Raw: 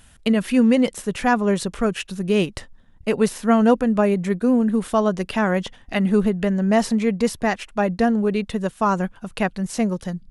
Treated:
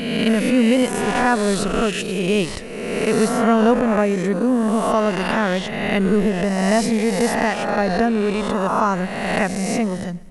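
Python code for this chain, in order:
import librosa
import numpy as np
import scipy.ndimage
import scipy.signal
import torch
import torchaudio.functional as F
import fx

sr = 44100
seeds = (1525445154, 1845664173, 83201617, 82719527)

y = fx.spec_swells(x, sr, rise_s=1.59)
y = fx.high_shelf(y, sr, hz=8100.0, db=6.5, at=(1.98, 2.52))
y = fx.echo_feedback(y, sr, ms=126, feedback_pct=55, wet_db=-22)
y = y * librosa.db_to_amplitude(-1.0)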